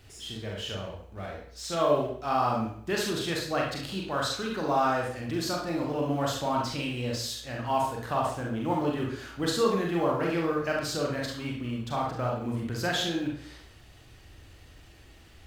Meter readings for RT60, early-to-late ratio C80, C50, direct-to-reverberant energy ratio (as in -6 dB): 0.60 s, 7.5 dB, 3.5 dB, -2.0 dB